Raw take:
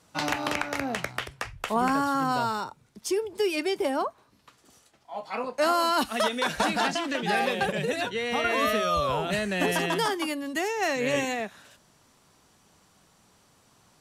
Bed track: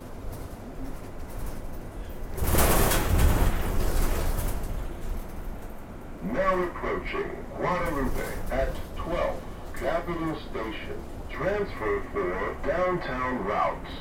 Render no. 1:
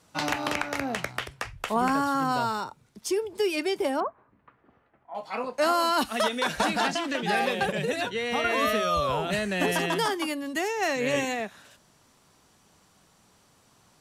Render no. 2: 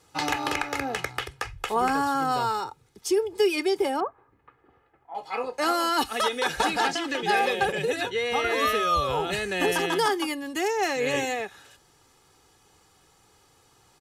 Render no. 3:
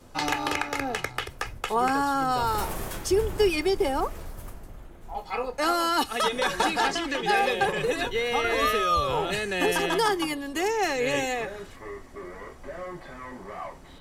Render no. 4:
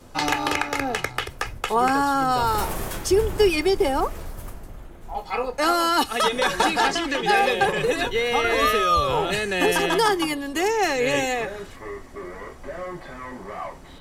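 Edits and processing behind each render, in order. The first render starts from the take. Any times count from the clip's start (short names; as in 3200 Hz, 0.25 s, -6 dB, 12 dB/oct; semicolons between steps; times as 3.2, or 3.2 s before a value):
4–5.15 LPF 2000 Hz 24 dB/oct
comb 2.4 ms, depth 62%
add bed track -11.5 dB
gain +4 dB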